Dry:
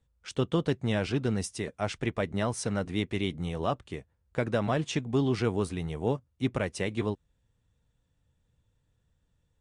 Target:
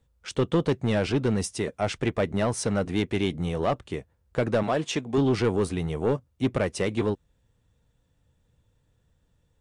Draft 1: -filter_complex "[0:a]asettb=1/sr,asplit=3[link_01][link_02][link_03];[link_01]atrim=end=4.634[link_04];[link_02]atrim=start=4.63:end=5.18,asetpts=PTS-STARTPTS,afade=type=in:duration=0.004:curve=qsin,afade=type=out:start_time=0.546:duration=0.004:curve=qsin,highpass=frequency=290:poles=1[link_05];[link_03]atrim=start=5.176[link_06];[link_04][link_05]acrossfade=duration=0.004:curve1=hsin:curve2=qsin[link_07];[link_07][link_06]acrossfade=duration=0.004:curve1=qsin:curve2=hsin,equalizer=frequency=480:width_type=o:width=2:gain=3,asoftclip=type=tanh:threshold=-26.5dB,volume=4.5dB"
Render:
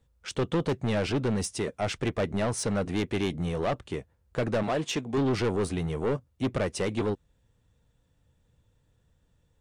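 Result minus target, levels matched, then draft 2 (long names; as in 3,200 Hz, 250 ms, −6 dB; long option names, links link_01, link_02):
soft clipping: distortion +6 dB
-filter_complex "[0:a]asettb=1/sr,asplit=3[link_01][link_02][link_03];[link_01]atrim=end=4.634[link_04];[link_02]atrim=start=4.63:end=5.18,asetpts=PTS-STARTPTS,afade=type=in:duration=0.004:curve=qsin,afade=type=out:start_time=0.546:duration=0.004:curve=qsin,highpass=frequency=290:poles=1[link_05];[link_03]atrim=start=5.176[link_06];[link_04][link_05]acrossfade=duration=0.004:curve1=hsin:curve2=qsin[link_07];[link_07][link_06]acrossfade=duration=0.004:curve1=qsin:curve2=hsin,equalizer=frequency=480:width_type=o:width=2:gain=3,asoftclip=type=tanh:threshold=-20dB,volume=4.5dB"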